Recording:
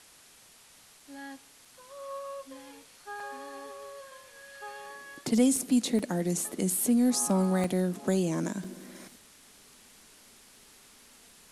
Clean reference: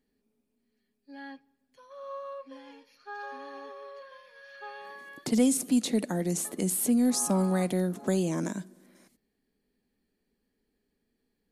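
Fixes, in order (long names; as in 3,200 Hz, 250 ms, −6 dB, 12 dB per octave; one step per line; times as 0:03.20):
repair the gap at 0:01.00/0:01.65/0:03.20/0:05.56/0:05.99/0:07.64/0:08.64, 3.2 ms
broadband denoise 22 dB, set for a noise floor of −57 dBFS
level correction −11.5 dB, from 0:08.63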